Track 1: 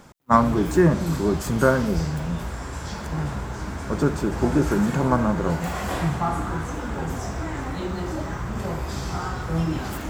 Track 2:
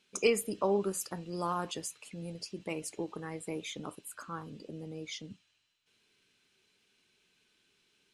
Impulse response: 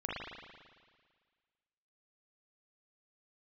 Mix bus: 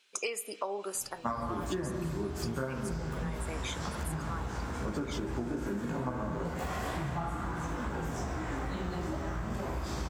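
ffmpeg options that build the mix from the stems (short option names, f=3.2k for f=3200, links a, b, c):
-filter_complex "[0:a]flanger=delay=15:depth=3:speed=2.3,adelay=950,volume=-5dB,asplit=2[a][b];[b]volume=-4dB[c];[1:a]highpass=590,acontrast=47,volume=-2dB,asplit=2[d][e];[e]volume=-22dB[f];[2:a]atrim=start_sample=2205[g];[c][f]amix=inputs=2:normalize=0[h];[h][g]afir=irnorm=-1:irlink=0[i];[a][d][i]amix=inputs=3:normalize=0,acompressor=threshold=-31dB:ratio=10"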